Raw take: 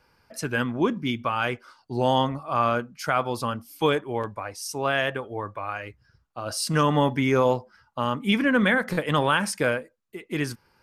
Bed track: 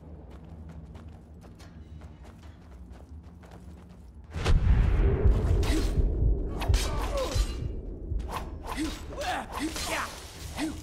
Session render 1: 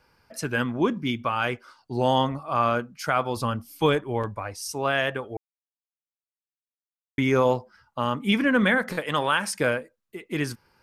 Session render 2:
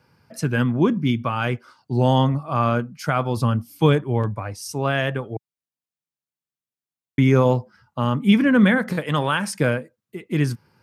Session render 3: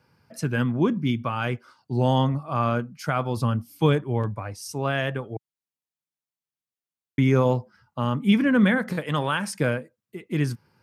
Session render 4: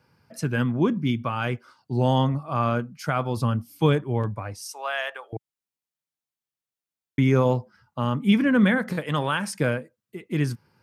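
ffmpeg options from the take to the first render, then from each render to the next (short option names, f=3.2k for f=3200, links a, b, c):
-filter_complex "[0:a]asettb=1/sr,asplit=3[a][b][c];[a]atrim=end=3.364[d];[b]atrim=start=3.36:end=4.72,asetpts=PTS-STARTPTS,afade=t=in:d=0.004:c=qsin,afade=t=out:st=1.356:d=0.004:c=qsin,lowshelf=f=110:g=10.5[e];[c]atrim=start=4.716[f];[d][e]acrossfade=d=0.004:c1=hsin:c2=qsin[g];[g][f]acrossfade=d=0.004:c1=qsin:c2=hsin,asettb=1/sr,asplit=3[h][i][j];[h]atrim=end=8.924[k];[i]atrim=start=8.92:end=9.53,asetpts=PTS-STARTPTS,afade=t=in:d=0.004:c=qsin,afade=t=out:st=0.606:d=0.004:c=qsin,lowshelf=f=350:g=-9[l];[j]atrim=start=9.526[m];[k][l]acrossfade=d=0.004:c1=hsin:c2=qsin[n];[n][m]acrossfade=d=0.004:c1=qsin:c2=hsin,asplit=3[o][p][q];[o]atrim=end=5.37,asetpts=PTS-STARTPTS,afade=t=out:st=5.366:d=0.004:c=hsin[r];[p]atrim=start=5.37:end=7.18,asetpts=PTS-STARTPTS,volume=0[s];[q]atrim=start=7.18,asetpts=PTS-STARTPTS,afade=t=in:d=0.004:c=hsin[t];[r][s][t]concat=n=3:v=0:a=1"
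-af "highpass=95,equalizer=f=130:t=o:w=2:g=12.5"
-af "volume=-3.5dB"
-filter_complex "[0:a]asettb=1/sr,asplit=3[a][b][c];[a]atrim=end=4.664[d];[b]atrim=start=4.66:end=5.33,asetpts=PTS-STARTPTS,afade=t=in:d=0.004:c=qsin,afade=t=out:st=0.666:d=0.004:c=qsin,highpass=f=640:w=0.5412,highpass=f=640:w=1.3066[e];[c]atrim=start=5.326[f];[d][e]acrossfade=d=0.004:c1=hsin:c2=qsin[g];[g][f]acrossfade=d=0.004:c1=qsin:c2=hsin"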